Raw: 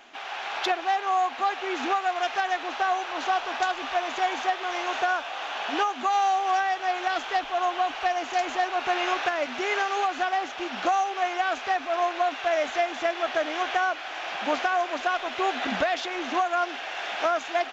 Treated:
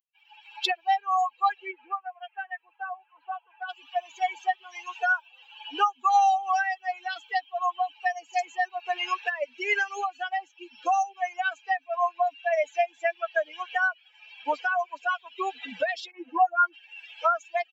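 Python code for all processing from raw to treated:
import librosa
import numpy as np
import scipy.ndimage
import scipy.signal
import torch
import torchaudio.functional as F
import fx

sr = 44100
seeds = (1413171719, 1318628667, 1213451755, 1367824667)

y = fx.chain(x, sr, fx.highpass(hz=440.0, slope=6),
    fx.air_absorb(metres=330.0), at=(1.71, 3.69))
y = fx.chain(y, sr, fx.high_shelf(hz=2600.0, db=-10.0),
    fx.doubler(ms=12.0, db=-4),
    fx.dispersion(late='highs', ms=58.0, hz=2500.0), at=(16.11, 16.73))
y = fx.bin_expand(y, sr, power=3.0)
y = scipy.signal.sosfilt(scipy.signal.bessel(2, 620.0, 'highpass', norm='mag', fs=sr, output='sos'), y)
y = fx.peak_eq(y, sr, hz=1300.0, db=3.5, octaves=2.1)
y = F.gain(torch.from_numpy(y), 5.5).numpy()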